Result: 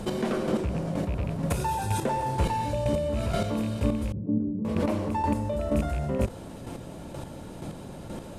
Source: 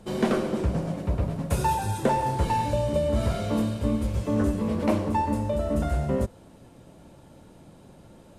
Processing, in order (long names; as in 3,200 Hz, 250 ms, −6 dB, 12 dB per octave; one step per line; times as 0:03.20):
loose part that buzzes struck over −22 dBFS, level −29 dBFS
square-wave tremolo 2.1 Hz, depth 65%, duty 20%
0:04.12–0:04.65: flat-topped band-pass 200 Hz, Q 1
envelope flattener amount 50%
level −1 dB